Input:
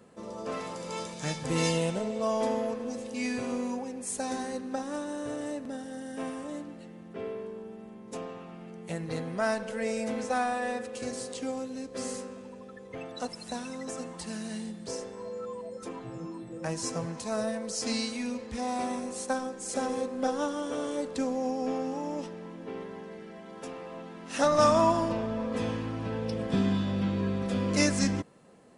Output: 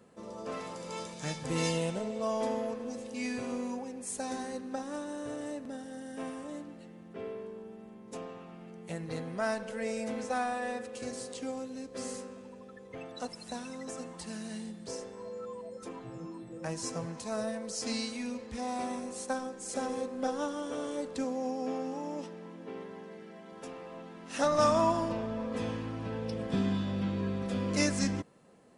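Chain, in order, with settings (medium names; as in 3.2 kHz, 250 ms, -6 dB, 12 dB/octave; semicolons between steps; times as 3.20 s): 21.24–23.53 s: high-pass 110 Hz 12 dB/octave; trim -3.5 dB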